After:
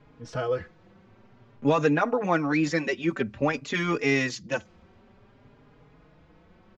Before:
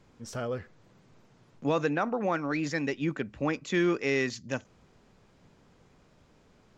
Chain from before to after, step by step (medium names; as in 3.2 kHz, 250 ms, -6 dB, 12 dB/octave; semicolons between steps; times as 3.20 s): level-controlled noise filter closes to 2.8 kHz, open at -23.5 dBFS; endless flanger 4.4 ms +0.52 Hz; trim +8 dB